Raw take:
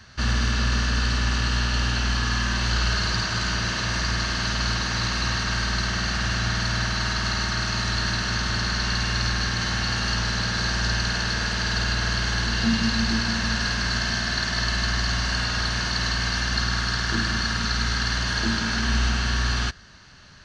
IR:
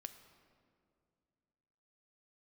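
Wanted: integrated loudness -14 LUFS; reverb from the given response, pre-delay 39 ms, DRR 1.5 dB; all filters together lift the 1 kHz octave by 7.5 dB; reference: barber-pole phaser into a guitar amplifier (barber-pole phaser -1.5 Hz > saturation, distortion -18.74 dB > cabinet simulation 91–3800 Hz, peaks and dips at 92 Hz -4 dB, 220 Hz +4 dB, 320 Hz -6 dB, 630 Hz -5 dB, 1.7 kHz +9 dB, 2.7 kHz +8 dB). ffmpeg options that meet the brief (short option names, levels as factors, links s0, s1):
-filter_complex "[0:a]equalizer=f=1000:t=o:g=8.5,asplit=2[s0][s1];[1:a]atrim=start_sample=2205,adelay=39[s2];[s1][s2]afir=irnorm=-1:irlink=0,volume=1.5[s3];[s0][s3]amix=inputs=2:normalize=0,asplit=2[s4][s5];[s5]afreqshift=-1.5[s6];[s4][s6]amix=inputs=2:normalize=1,asoftclip=threshold=0.141,highpass=91,equalizer=f=92:t=q:w=4:g=-4,equalizer=f=220:t=q:w=4:g=4,equalizer=f=320:t=q:w=4:g=-6,equalizer=f=630:t=q:w=4:g=-5,equalizer=f=1700:t=q:w=4:g=9,equalizer=f=2700:t=q:w=4:g=8,lowpass=f=3800:w=0.5412,lowpass=f=3800:w=1.3066,volume=2.24"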